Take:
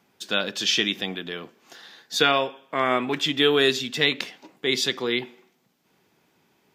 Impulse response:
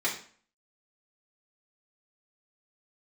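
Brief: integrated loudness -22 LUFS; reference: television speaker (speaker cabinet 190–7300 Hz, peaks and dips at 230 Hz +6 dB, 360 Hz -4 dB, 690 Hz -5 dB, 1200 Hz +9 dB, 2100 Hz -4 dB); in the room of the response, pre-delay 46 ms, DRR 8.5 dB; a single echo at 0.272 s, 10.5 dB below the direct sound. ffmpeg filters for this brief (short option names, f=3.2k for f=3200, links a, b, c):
-filter_complex "[0:a]aecho=1:1:272:0.299,asplit=2[a][b];[1:a]atrim=start_sample=2205,adelay=46[c];[b][c]afir=irnorm=-1:irlink=0,volume=-17.5dB[d];[a][d]amix=inputs=2:normalize=0,highpass=f=190:w=0.5412,highpass=f=190:w=1.3066,equalizer=f=230:t=q:w=4:g=6,equalizer=f=360:t=q:w=4:g=-4,equalizer=f=690:t=q:w=4:g=-5,equalizer=f=1.2k:t=q:w=4:g=9,equalizer=f=2.1k:t=q:w=4:g=-4,lowpass=f=7.3k:w=0.5412,lowpass=f=7.3k:w=1.3066,volume=0.5dB"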